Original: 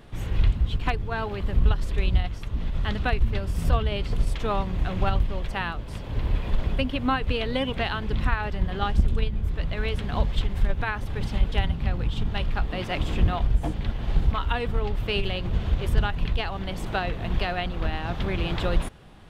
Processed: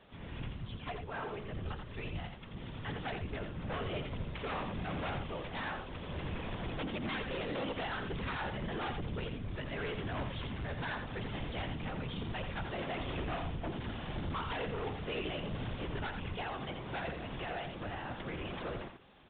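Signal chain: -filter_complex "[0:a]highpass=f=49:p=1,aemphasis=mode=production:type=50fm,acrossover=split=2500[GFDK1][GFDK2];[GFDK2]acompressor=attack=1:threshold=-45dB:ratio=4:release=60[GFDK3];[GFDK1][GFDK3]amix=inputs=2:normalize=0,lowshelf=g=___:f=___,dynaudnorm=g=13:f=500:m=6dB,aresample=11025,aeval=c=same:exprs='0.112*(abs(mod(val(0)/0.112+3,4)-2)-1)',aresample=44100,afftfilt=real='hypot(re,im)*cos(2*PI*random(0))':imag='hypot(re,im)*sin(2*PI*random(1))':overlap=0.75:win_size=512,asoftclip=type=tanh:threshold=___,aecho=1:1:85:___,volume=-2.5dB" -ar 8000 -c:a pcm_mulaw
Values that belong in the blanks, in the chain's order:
-9.5, 120, -30.5dB, 0.447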